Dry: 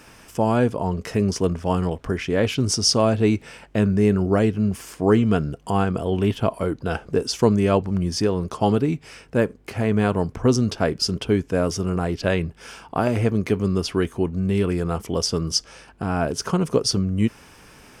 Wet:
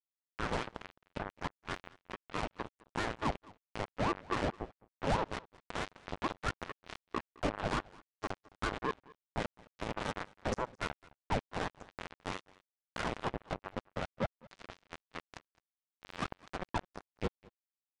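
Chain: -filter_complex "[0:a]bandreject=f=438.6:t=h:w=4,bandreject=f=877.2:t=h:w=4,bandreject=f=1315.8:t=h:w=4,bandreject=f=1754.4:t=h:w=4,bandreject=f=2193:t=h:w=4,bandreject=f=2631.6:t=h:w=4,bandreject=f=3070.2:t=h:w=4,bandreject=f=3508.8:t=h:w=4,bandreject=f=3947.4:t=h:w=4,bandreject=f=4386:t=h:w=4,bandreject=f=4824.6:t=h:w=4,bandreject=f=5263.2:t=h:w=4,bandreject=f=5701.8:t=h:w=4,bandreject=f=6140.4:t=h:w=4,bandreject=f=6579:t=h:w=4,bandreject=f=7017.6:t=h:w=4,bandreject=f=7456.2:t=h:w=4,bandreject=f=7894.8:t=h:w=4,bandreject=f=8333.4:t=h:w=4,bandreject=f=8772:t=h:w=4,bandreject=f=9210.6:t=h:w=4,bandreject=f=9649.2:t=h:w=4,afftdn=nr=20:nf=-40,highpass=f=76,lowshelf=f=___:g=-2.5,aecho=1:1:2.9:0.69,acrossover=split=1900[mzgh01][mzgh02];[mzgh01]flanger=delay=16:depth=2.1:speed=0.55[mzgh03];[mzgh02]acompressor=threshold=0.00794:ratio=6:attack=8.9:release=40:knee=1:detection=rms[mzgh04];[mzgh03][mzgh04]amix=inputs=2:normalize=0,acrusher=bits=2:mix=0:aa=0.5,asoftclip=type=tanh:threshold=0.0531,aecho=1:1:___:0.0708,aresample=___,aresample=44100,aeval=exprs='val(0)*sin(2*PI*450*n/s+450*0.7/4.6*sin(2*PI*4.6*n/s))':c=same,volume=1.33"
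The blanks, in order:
280, 213, 22050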